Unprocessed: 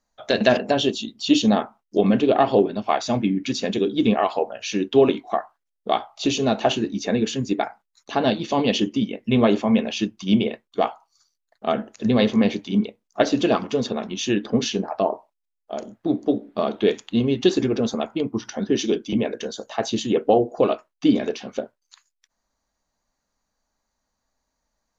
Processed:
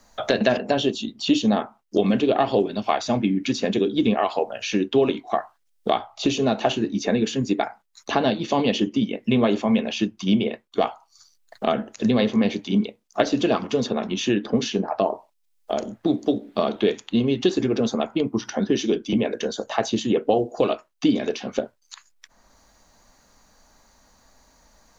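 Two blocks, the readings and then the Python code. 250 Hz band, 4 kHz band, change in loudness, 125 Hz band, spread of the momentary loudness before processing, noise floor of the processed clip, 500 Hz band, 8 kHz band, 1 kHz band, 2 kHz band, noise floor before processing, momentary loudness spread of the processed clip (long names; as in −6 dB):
−0.5 dB, −1.0 dB, −1.0 dB, −1.0 dB, 10 LU, −66 dBFS, −1.0 dB, can't be measured, −1.0 dB, −0.5 dB, −79 dBFS, 6 LU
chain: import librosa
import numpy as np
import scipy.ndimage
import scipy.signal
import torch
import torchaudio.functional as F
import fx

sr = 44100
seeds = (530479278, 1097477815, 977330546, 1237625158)

y = fx.band_squash(x, sr, depth_pct=70)
y = F.gain(torch.from_numpy(y), -1.0).numpy()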